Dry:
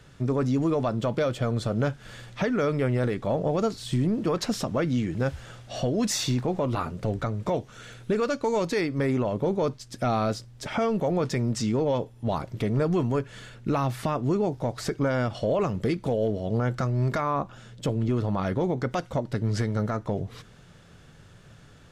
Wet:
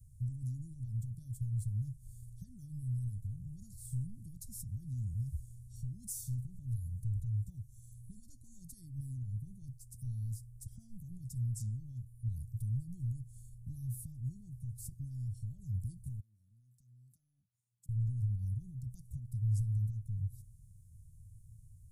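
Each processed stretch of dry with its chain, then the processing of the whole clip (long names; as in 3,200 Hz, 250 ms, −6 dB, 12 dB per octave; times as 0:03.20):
0:16.20–0:17.89: downward expander −35 dBFS + high-pass filter 300 Hz + downward compressor 3 to 1, threshold −48 dBFS
whole clip: brickwall limiter −20 dBFS; elliptic band-stop filter 100–9,700 Hz, stop band 60 dB; level +1 dB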